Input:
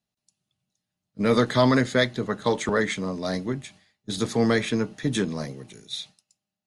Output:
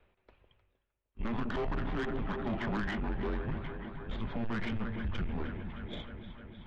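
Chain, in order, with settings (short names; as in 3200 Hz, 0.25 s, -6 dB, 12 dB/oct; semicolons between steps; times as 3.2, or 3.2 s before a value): in parallel at -7.5 dB: sample-and-hold 14×; on the sum: echo with dull and thin repeats by turns 0.154 s, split 1000 Hz, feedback 83%, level -11.5 dB; limiter -15 dBFS, peak gain reduction 9 dB; mistuned SSB -230 Hz 160–3000 Hz; soft clip -26 dBFS, distortion -10 dB; reverse; upward compressor, threshold -43 dBFS; reverse; gain -3.5 dB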